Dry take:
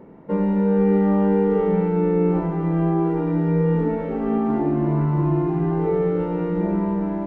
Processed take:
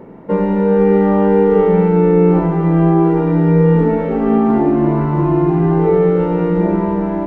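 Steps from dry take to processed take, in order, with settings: hum notches 50/100/150/200/250/300 Hz; trim +8.5 dB

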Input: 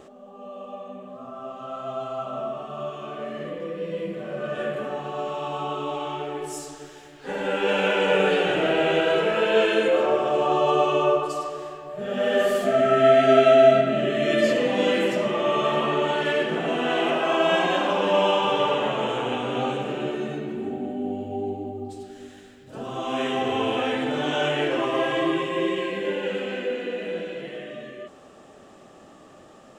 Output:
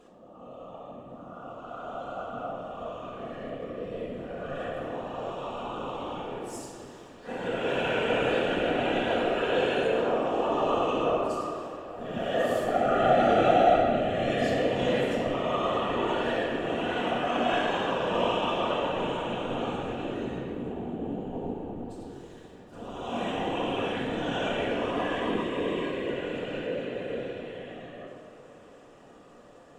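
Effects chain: band-stop 2.1 kHz, Q 13; whisper effect; on a send: tape echo 288 ms, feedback 90%, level -21.5 dB, low-pass 5.8 kHz; on the sum: simulated room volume 1100 m³, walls mixed, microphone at 1.8 m; trim -9 dB

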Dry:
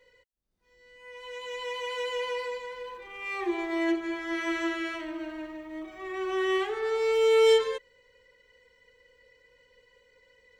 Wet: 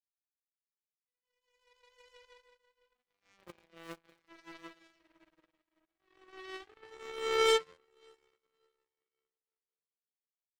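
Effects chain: 2.95–4.28 s: cycle switcher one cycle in 2, muted; echo that smears into a reverb 678 ms, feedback 56%, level -12 dB; power-law waveshaper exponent 3

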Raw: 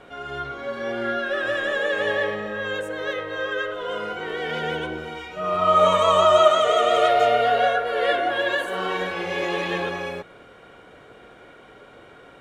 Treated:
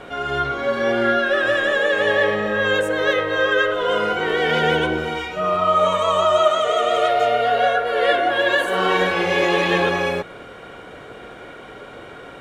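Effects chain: gain riding within 5 dB 0.5 s; trim +4 dB

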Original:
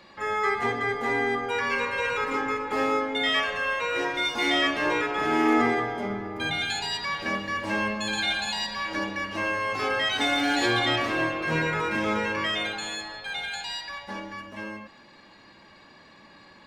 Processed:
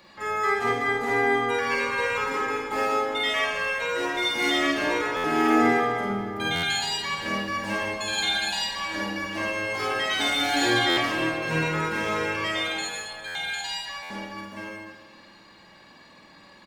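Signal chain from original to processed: treble shelf 8.3 kHz +11 dB; doubling 50 ms -3 dB; reverberation RT60 1.5 s, pre-delay 38 ms, DRR 5 dB; buffer glitch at 5.16/6.55/10.89/13.27/14.02 s, samples 512, times 6; trim -2.5 dB

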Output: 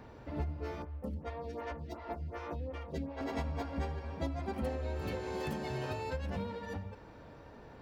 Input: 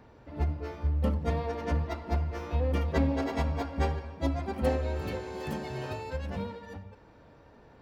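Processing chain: compression 5:1, threshold -37 dBFS, peak gain reduction 14.5 dB; 0.82–3.21 s: lamp-driven phase shifter 2.7 Hz; trim +3 dB

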